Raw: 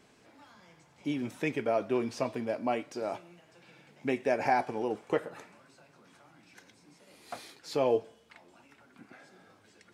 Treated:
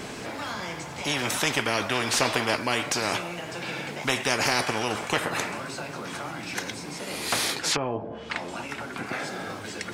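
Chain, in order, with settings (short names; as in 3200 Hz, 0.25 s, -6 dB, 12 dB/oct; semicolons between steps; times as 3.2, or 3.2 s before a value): 2.13–2.56 bell 680 Hz +12.5 dB 2.3 oct; 7.54–9.06 treble ducked by the level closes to 570 Hz, closed at -28 dBFS; spectral compressor 4:1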